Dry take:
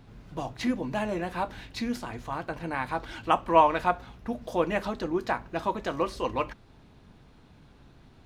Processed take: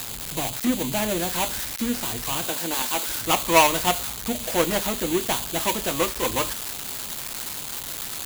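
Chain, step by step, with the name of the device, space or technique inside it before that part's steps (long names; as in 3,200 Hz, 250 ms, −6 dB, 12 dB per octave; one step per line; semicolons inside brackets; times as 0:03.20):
0:02.48–0:03.07: high-pass filter 190 Hz 24 dB per octave
budget class-D amplifier (gap after every zero crossing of 0.27 ms; spike at every zero crossing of −15.5 dBFS)
level +4.5 dB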